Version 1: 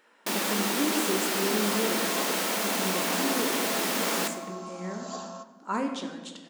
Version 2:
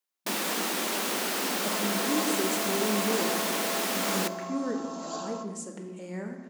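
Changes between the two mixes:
speech: entry +1.30 s; first sound: send -8.0 dB; second sound: send +8.5 dB

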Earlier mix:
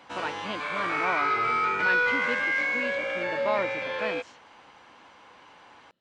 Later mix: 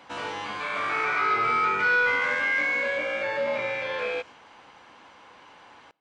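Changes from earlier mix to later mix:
speech -12.0 dB; reverb: on, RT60 0.65 s

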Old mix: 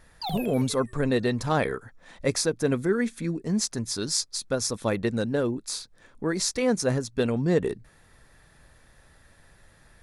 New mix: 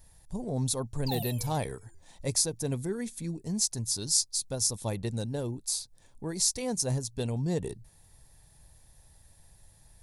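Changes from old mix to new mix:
background: entry +0.85 s; master: add FFT filter 120 Hz 0 dB, 230 Hz -9 dB, 510 Hz -10 dB, 880 Hz -4 dB, 1.3 kHz -18 dB, 4.5 kHz -2 dB, 14 kHz +8 dB

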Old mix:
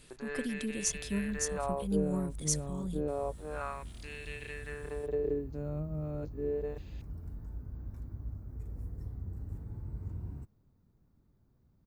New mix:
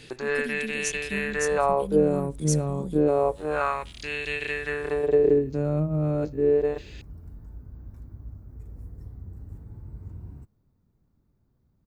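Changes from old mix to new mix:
first sound +12.0 dB; reverb: on, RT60 0.45 s

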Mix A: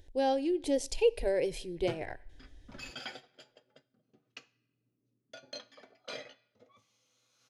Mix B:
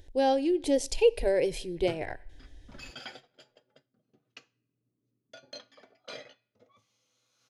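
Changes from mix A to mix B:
speech +4.0 dB; background: send -9.5 dB

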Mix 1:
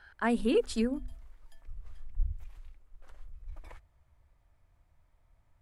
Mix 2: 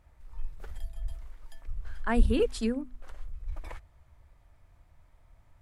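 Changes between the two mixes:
speech: entry +1.85 s; background +7.5 dB

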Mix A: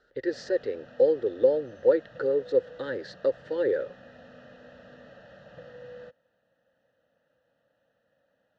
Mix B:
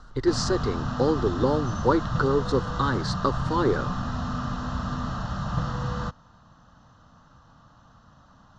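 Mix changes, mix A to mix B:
speech -8.5 dB; master: remove vowel filter e

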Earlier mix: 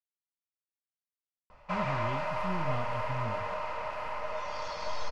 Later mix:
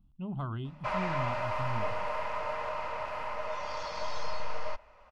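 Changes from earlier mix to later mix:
speech: entry -1.50 s; background: entry -0.85 s

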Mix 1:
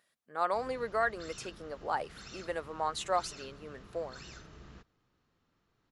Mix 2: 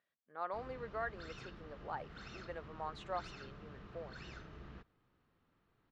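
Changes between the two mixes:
speech -10.0 dB; master: add low-pass 3.1 kHz 12 dB/octave

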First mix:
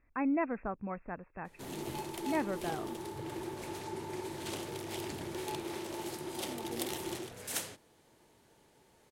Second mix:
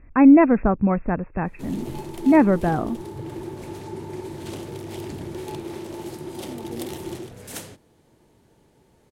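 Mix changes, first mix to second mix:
speech +12.0 dB; master: add bass shelf 450 Hz +11.5 dB

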